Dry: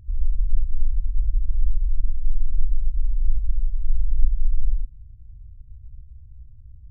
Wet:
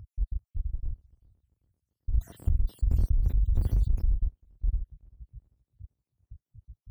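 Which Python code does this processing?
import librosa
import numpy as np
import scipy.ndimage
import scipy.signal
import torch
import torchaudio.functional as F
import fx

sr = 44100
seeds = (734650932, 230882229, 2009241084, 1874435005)

p1 = fx.spec_dropout(x, sr, seeds[0], share_pct=79)
p2 = np.clip(p1, -10.0 ** (-20.5 / 20.0), 10.0 ** (-20.5 / 20.0))
p3 = p1 + F.gain(torch.from_numpy(p2), -6.5).numpy()
p4 = scipy.signal.sosfilt(scipy.signal.butter(2, 49.0, 'highpass', fs=sr, output='sos'), p3)
p5 = fx.echo_thinned(p4, sr, ms=391, feedback_pct=68, hz=160.0, wet_db=-16.5)
y = fx.env_flatten(p5, sr, amount_pct=100, at=(2.12, 4.14), fade=0.02)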